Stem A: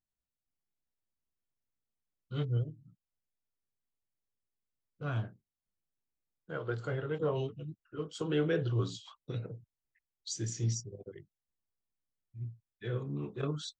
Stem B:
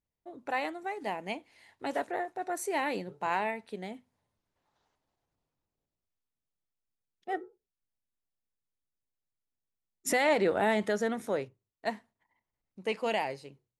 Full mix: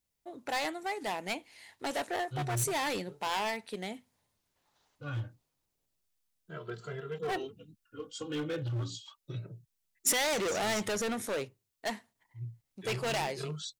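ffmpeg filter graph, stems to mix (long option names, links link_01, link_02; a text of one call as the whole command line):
ffmpeg -i stem1.wav -i stem2.wav -filter_complex "[0:a]lowshelf=frequency=130:gain=4.5,asplit=2[link_01][link_02];[link_02]adelay=2.6,afreqshift=0.3[link_03];[link_01][link_03]amix=inputs=2:normalize=1,volume=-2.5dB[link_04];[1:a]volume=0.5dB[link_05];[link_04][link_05]amix=inputs=2:normalize=0,asoftclip=type=hard:threshold=-30.5dB,highshelf=frequency=2400:gain=10" out.wav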